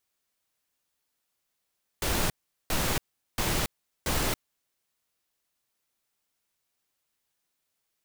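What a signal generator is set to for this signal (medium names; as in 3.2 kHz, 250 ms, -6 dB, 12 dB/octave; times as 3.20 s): noise bursts pink, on 0.28 s, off 0.40 s, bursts 4, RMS -27 dBFS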